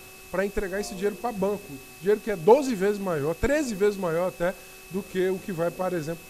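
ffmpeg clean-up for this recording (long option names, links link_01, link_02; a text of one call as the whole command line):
ffmpeg -i in.wav -af "adeclick=threshold=4,bandreject=frequency=377.3:width_type=h:width=4,bandreject=frequency=754.6:width_type=h:width=4,bandreject=frequency=1131.9:width_type=h:width=4,bandreject=frequency=2600:width=30,afwtdn=0.004" out.wav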